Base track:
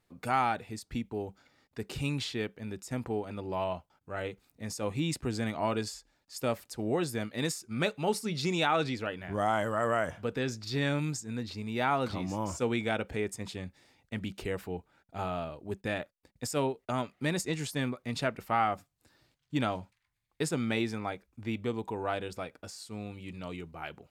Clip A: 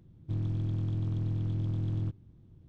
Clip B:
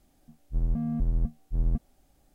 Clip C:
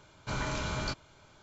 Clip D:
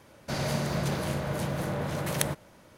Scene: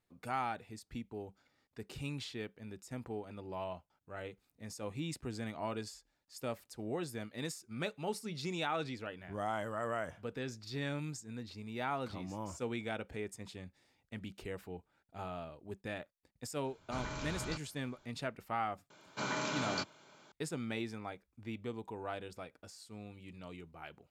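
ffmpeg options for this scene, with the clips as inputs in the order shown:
-filter_complex "[3:a]asplit=2[s0][s1];[0:a]volume=0.376[s2];[s1]highpass=f=170:w=0.5412,highpass=f=170:w=1.3066[s3];[s0]atrim=end=1.42,asetpts=PTS-STARTPTS,volume=0.398,afade=t=in:d=0.004:c=hsin,afade=t=out:st=1.416:d=0.004:c=hsin,adelay=16640[s4];[s3]atrim=end=1.42,asetpts=PTS-STARTPTS,volume=0.891,afade=t=in:d=0.004:c=hsin,afade=t=out:st=1.416:d=0.004:c=hsin,adelay=18900[s5];[s2][s4][s5]amix=inputs=3:normalize=0"

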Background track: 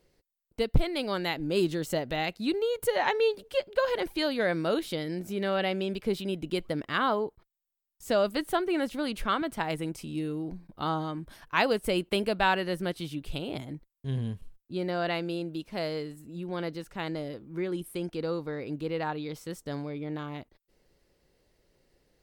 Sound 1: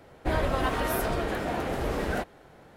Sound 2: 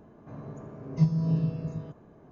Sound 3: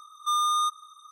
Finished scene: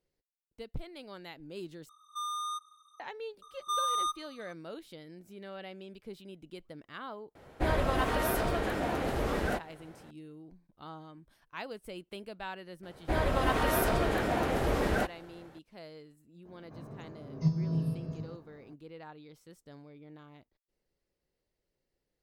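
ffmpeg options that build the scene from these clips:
-filter_complex "[3:a]asplit=2[s0][s1];[1:a]asplit=2[s2][s3];[0:a]volume=0.158[s4];[s3]dynaudnorm=f=400:g=3:m=1.5[s5];[2:a]aexciter=amount=2:drive=3:freq=4100[s6];[s4]asplit=2[s7][s8];[s7]atrim=end=1.894[s9];[s0]atrim=end=1.11,asetpts=PTS-STARTPTS,volume=0.266[s10];[s8]atrim=start=2.996[s11];[s1]atrim=end=1.11,asetpts=PTS-STARTPTS,volume=0.501,afade=t=in:d=0.004:c=hsin,afade=t=out:st=1.106:d=0.004:c=hsin,adelay=3420[s12];[s2]atrim=end=2.76,asetpts=PTS-STARTPTS,volume=0.794,afade=t=in:d=0.004:c=hsin,afade=t=out:st=2.756:d=0.004:c=hsin,adelay=7350[s13];[s5]atrim=end=2.76,asetpts=PTS-STARTPTS,volume=0.708,afade=t=in:d=0.004:c=hsin,afade=t=out:st=2.756:d=0.004:c=hsin,adelay=12830[s14];[s6]atrim=end=2.31,asetpts=PTS-STARTPTS,volume=0.562,afade=t=in:d=0.02,afade=t=out:st=2.29:d=0.02,adelay=16440[s15];[s9][s10]acrossfade=d=0.004:c1=hsin:c2=hsin[s16];[s16][s11]acrossfade=d=0.004:c1=hsin:c2=hsin[s17];[s17][s12][s13][s14][s15]amix=inputs=5:normalize=0"

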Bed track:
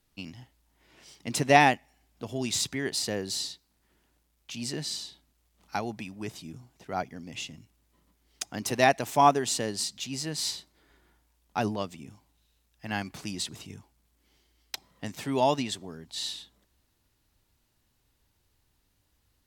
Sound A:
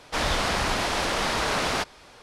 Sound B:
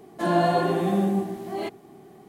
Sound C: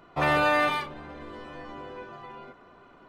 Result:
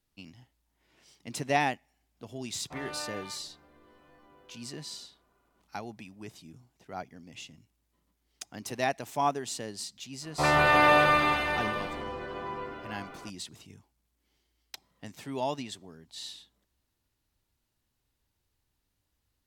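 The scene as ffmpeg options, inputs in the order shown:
-filter_complex "[3:a]asplit=2[s0][s1];[0:a]volume=0.422[s2];[s1]aecho=1:1:160|304|433.6|550.2|655.2|749.7|834.7|911.3|980.1:0.794|0.631|0.501|0.398|0.316|0.251|0.2|0.158|0.126[s3];[s0]atrim=end=3.08,asetpts=PTS-STARTPTS,volume=0.126,afade=t=in:d=0.004:c=hsin,afade=t=out:st=3.076:d=0.004:c=hsin,adelay=2540[s4];[s3]atrim=end=3.08,asetpts=PTS-STARTPTS,volume=0.944,afade=t=in:d=0.004:c=hsin,afade=t=out:st=3.076:d=0.004:c=hsin,adelay=10220[s5];[s2][s4][s5]amix=inputs=3:normalize=0"

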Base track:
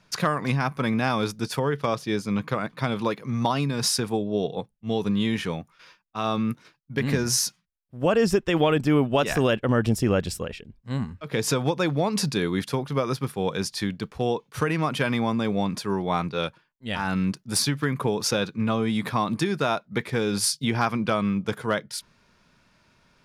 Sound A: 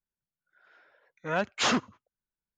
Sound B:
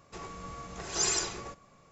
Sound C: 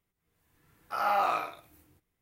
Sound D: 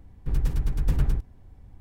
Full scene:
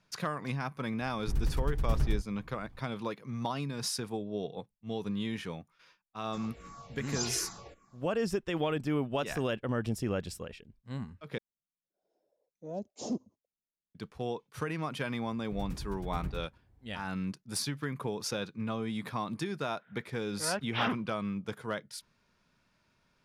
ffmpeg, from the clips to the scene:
-filter_complex "[4:a]asplit=2[s0][s1];[1:a]asplit=2[s2][s3];[0:a]volume=0.299[s4];[2:a]asplit=2[s5][s6];[s6]afreqshift=-2.6[s7];[s5][s7]amix=inputs=2:normalize=1[s8];[s2]firequalizer=gain_entry='entry(120,0);entry(200,8);entry(660,3);entry(1400,-30);entry(5400,0)':delay=0.05:min_phase=1[s9];[s1]highpass=48[s10];[s3]aresample=8000,aresample=44100[s11];[s4]asplit=2[s12][s13];[s12]atrim=end=11.384[s14];[s9]atrim=end=2.57,asetpts=PTS-STARTPTS,volume=0.237[s15];[s13]atrim=start=13.946[s16];[s0]atrim=end=1.8,asetpts=PTS-STARTPTS,volume=0.501,afade=t=in:d=0.004:c=hsin,afade=t=out:st=1.796:d=0.004:c=hsin,adelay=1010[s17];[s8]atrim=end=1.91,asetpts=PTS-STARTPTS,volume=0.631,afade=t=in:d=0.004:c=hsin,afade=t=out:st=1.906:d=0.004:c=hsin,adelay=6200[s18];[s10]atrim=end=1.8,asetpts=PTS-STARTPTS,volume=0.237,afade=t=in:d=0.004:c=hsin,afade=t=out:st=1.796:d=0.004:c=hsin,adelay=15250[s19];[s11]atrim=end=2.57,asetpts=PTS-STARTPTS,volume=0.501,afade=t=in:d=0.004:c=hsin,afade=t=out:st=2.566:d=0.004:c=hsin,adelay=19150[s20];[s14][s15]acrossfade=d=0.004:c1=hsin:c2=hsin[s21];[s21][s16]acrossfade=d=0.004:c1=hsin:c2=hsin[s22];[s22][s17][s18][s19][s20]amix=inputs=5:normalize=0"

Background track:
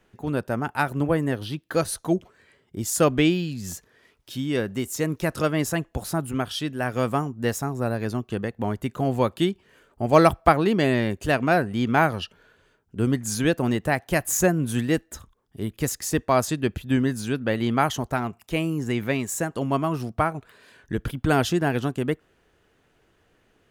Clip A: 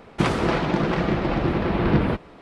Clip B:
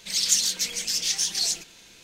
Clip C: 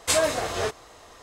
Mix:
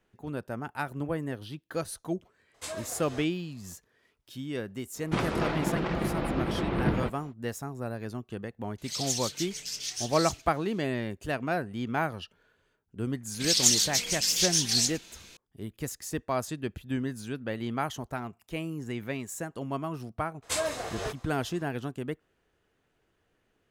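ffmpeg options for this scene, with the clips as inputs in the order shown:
-filter_complex "[3:a]asplit=2[s0][s1];[2:a]asplit=2[s2][s3];[0:a]volume=0.335[s4];[s2]afreqshift=-44[s5];[s0]atrim=end=1.22,asetpts=PTS-STARTPTS,volume=0.15,afade=t=in:d=0.004:c=hsin,afade=t=out:st=1.216:d=0.004:c=hsin,adelay=2540[s6];[1:a]atrim=end=2.41,asetpts=PTS-STARTPTS,volume=0.422,afade=t=in:d=0.05,afade=t=out:st=2.36:d=0.05,adelay=217413S[s7];[s5]atrim=end=2.03,asetpts=PTS-STARTPTS,volume=0.316,afade=t=in:d=0.004:c=hsin,afade=t=out:st=2.026:d=0.004:c=hsin,adelay=8780[s8];[s3]atrim=end=2.03,asetpts=PTS-STARTPTS,volume=0.944,afade=t=in:d=0.004:c=hsin,afade=t=out:st=2.026:d=0.004:c=hsin,adelay=13340[s9];[s1]atrim=end=1.22,asetpts=PTS-STARTPTS,volume=0.398,afade=t=in:d=0.02,afade=t=out:st=1.2:d=0.02,adelay=20420[s10];[s4][s6][s7][s8][s9][s10]amix=inputs=6:normalize=0"

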